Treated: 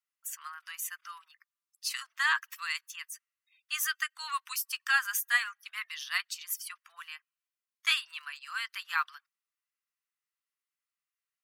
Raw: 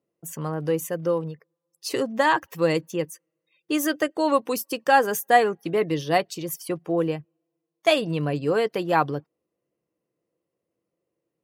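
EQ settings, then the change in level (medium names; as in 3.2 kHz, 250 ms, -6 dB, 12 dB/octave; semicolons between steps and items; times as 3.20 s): steep high-pass 1.2 kHz 48 dB/octave; -1.5 dB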